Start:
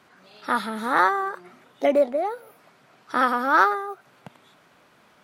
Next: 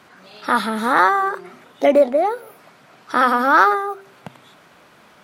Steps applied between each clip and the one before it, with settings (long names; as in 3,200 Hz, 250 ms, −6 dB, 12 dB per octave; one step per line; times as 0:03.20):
hum removal 130.5 Hz, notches 3
in parallel at 0 dB: brickwall limiter −15 dBFS, peak gain reduction 10 dB
on the sum: level +1.5 dB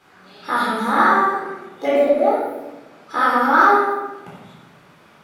rectangular room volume 550 cubic metres, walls mixed, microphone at 4 metres
level −10 dB